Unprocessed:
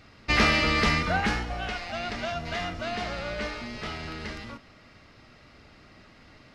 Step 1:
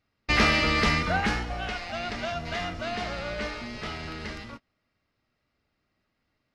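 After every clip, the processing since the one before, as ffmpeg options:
-af "agate=range=0.0631:threshold=0.01:ratio=16:detection=peak"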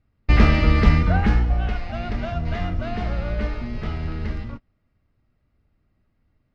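-af "acrusher=bits=9:mode=log:mix=0:aa=0.000001,aemphasis=mode=reproduction:type=riaa"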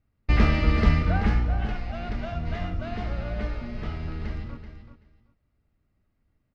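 -af "aecho=1:1:382|764:0.299|0.0478,volume=0.562"

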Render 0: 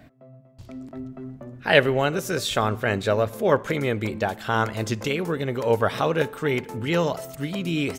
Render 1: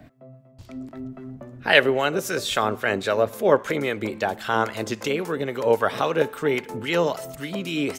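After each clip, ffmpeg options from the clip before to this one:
-filter_complex "[0:a]acrossover=split=220|7000[s0][s1][s2];[s0]acompressor=threshold=0.00891:ratio=6[s3];[s3][s1][s2]amix=inputs=3:normalize=0,acrossover=split=1000[s4][s5];[s4]aeval=exprs='val(0)*(1-0.5/2+0.5/2*cos(2*PI*3.7*n/s))':c=same[s6];[s5]aeval=exprs='val(0)*(1-0.5/2-0.5/2*cos(2*PI*3.7*n/s))':c=same[s7];[s6][s7]amix=inputs=2:normalize=0,volume=1.5"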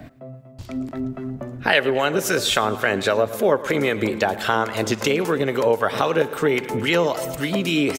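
-af "aecho=1:1:110|220|330|440|550:0.112|0.0651|0.0377|0.0219|0.0127,acompressor=threshold=0.0562:ratio=3,volume=2.51"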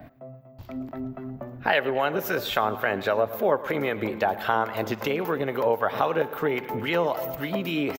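-af "firequalizer=gain_entry='entry(410,0);entry(760,6);entry(1300,2);entry(9400,-17);entry(14000,10)':delay=0.05:min_phase=1,volume=0.473"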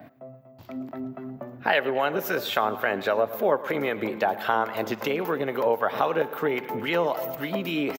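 -af "highpass=150"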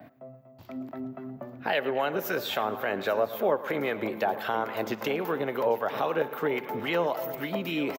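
-filter_complex "[0:a]acrossover=split=760|2500[s0][s1][s2];[s1]alimiter=limit=0.0841:level=0:latency=1[s3];[s0][s3][s2]amix=inputs=3:normalize=0,aecho=1:1:840:0.15,volume=0.75"

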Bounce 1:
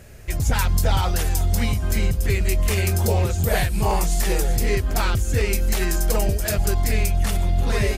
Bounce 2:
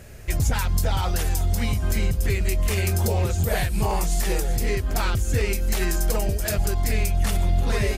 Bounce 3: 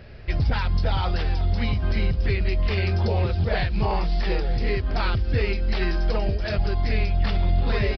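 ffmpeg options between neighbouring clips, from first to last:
-af "alimiter=limit=0.211:level=0:latency=1:release=449,volume=1.12"
-af "aresample=11025,aresample=44100"

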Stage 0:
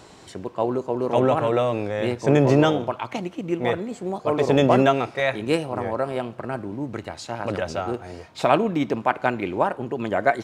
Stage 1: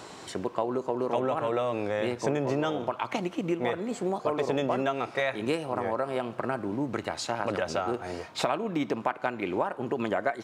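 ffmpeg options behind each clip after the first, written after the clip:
-af "highpass=f=180:p=1,equalizer=f=1200:t=o:w=0.77:g=2.5,acompressor=threshold=0.0398:ratio=6,volume=1.41"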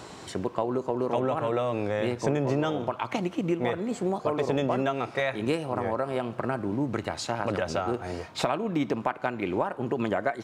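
-af "lowshelf=f=160:g=8.5"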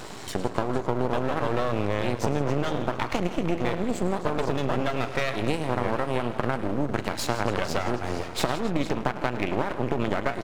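-af "acompressor=threshold=0.0447:ratio=6,aecho=1:1:41|105|162|267|457:0.133|0.188|0.188|0.133|0.188,aeval=exprs='max(val(0),0)':c=same,volume=2.51"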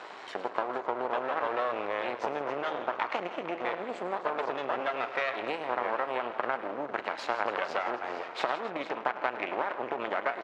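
-af "highpass=610,lowpass=2500"

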